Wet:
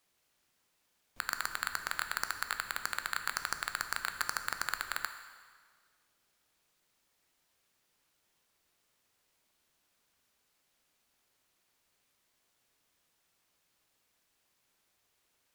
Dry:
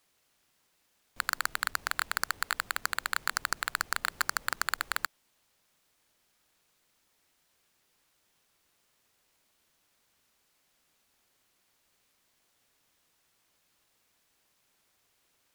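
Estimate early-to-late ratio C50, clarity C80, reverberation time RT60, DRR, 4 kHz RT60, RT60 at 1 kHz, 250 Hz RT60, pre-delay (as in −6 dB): 9.5 dB, 10.5 dB, 1.7 s, 7.5 dB, 1.6 s, 1.7 s, 1.6 s, 10 ms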